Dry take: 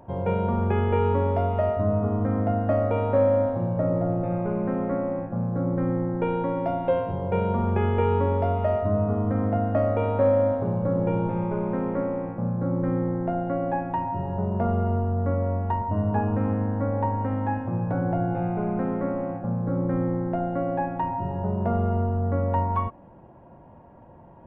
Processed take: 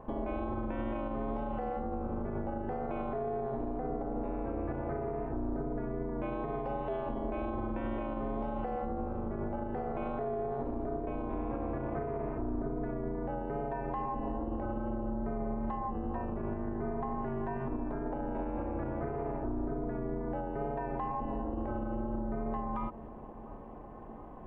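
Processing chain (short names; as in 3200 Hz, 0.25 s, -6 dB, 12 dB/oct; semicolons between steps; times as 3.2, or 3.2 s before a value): ring modulator 130 Hz; compressor, threshold -31 dBFS, peak gain reduction 12.5 dB; limiter -30 dBFS, peak gain reduction 9.5 dB; wow and flutter 19 cents; on a send: dark delay 0.697 s, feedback 73%, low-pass 1100 Hz, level -18 dB; on the sum: gain +3.5 dB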